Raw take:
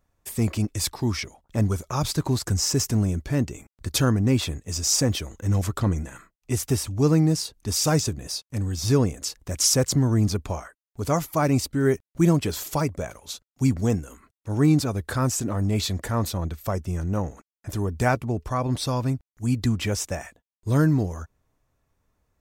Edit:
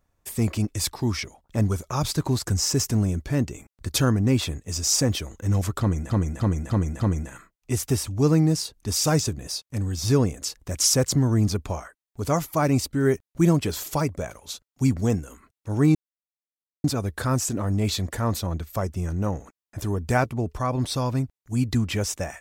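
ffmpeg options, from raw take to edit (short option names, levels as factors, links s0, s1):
-filter_complex "[0:a]asplit=6[s0][s1][s2][s3][s4][s5];[s0]atrim=end=6.102[s6];[s1]atrim=start=5.798:end=6.102[s7];[s2]atrim=start=5.798:end=6.102[s8];[s3]atrim=start=5.798:end=6.102[s9];[s4]atrim=start=5.798:end=14.75,asetpts=PTS-STARTPTS,afade=t=out:st=8.948:d=0.004:c=hsin,apad=pad_dur=0.89[s10];[s5]atrim=start=14.75,asetpts=PTS-STARTPTS,afade=t=in:d=0.004:c=hsin[s11];[s6][s7]acrossfade=d=0.004:c1=hsin:c2=hsin[s12];[s12][s8]acrossfade=d=0.004:c1=hsin:c2=hsin[s13];[s13][s9]acrossfade=d=0.004:c1=hsin:c2=hsin[s14];[s10][s11]concat=n=2:v=0:a=1[s15];[s14][s15]acrossfade=d=0.004:c1=hsin:c2=hsin"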